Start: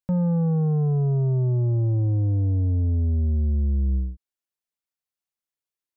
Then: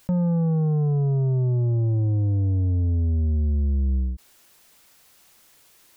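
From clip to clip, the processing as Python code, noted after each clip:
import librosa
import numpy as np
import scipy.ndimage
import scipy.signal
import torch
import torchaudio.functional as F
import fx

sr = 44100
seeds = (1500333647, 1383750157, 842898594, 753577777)

y = fx.env_flatten(x, sr, amount_pct=50)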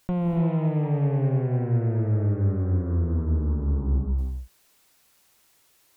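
y = fx.cheby_harmonics(x, sr, harmonics=(2, 7, 8), levels_db=(-7, -26, -27), full_scale_db=-18.0)
y = fx.rev_gated(y, sr, seeds[0], gate_ms=330, shape='rising', drr_db=2.5)
y = F.gain(torch.from_numpy(y), -4.0).numpy()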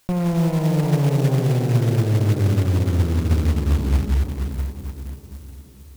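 y = fx.echo_diffused(x, sr, ms=484, feedback_pct=46, wet_db=-6.0)
y = fx.quant_float(y, sr, bits=2)
y = F.gain(torch.from_numpy(y), 4.0).numpy()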